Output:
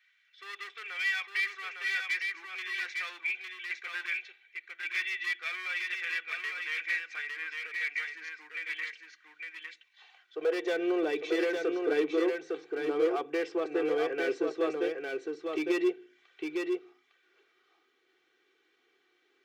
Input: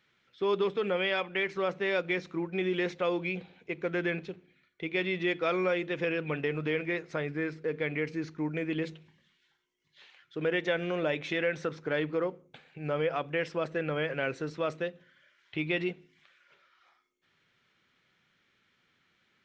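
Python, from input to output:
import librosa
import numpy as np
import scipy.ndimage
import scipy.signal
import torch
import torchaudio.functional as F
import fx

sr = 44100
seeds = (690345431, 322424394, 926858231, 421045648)

y = x + 0.86 * np.pad(x, (int(2.6 * sr / 1000.0), 0))[:len(x)]
y = np.clip(y, -10.0 ** (-24.5 / 20.0), 10.0 ** (-24.5 / 20.0))
y = fx.filter_sweep_highpass(y, sr, from_hz=1900.0, to_hz=370.0, start_s=9.04, end_s=10.83, q=2.6)
y = y + 10.0 ** (-4.0 / 20.0) * np.pad(y, (int(856 * sr / 1000.0), 0))[:len(y)]
y = y * librosa.db_to_amplitude(-5.0)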